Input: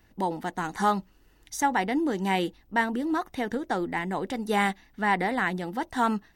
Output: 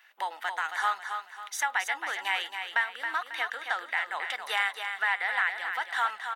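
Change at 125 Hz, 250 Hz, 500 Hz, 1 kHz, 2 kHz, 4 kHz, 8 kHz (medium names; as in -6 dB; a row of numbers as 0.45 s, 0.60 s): under -40 dB, -33.0 dB, -13.5 dB, -4.0 dB, +3.5 dB, +3.5 dB, -0.5 dB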